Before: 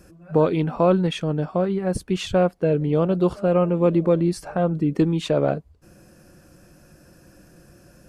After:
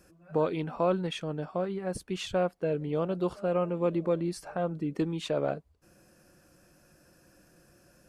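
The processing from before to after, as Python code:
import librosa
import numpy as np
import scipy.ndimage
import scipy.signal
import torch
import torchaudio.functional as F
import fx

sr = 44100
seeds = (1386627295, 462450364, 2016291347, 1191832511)

y = fx.low_shelf(x, sr, hz=330.0, db=-7.0)
y = y * librosa.db_to_amplitude(-6.5)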